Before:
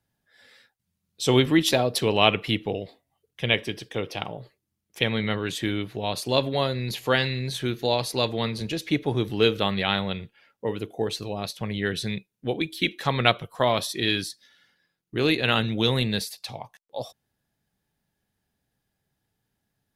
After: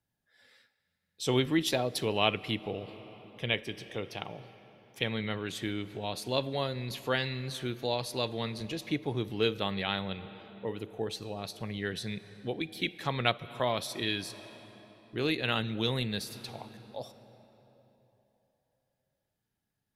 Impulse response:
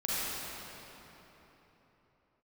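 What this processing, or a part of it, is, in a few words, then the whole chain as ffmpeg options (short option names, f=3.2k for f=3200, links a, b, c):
ducked reverb: -filter_complex "[0:a]asplit=3[a][b][c];[1:a]atrim=start_sample=2205[d];[b][d]afir=irnorm=-1:irlink=0[e];[c]apad=whole_len=879802[f];[e][f]sidechaincompress=threshold=-31dB:ratio=5:attack=36:release=215,volume=-20dB[g];[a][g]amix=inputs=2:normalize=0,volume=-8dB"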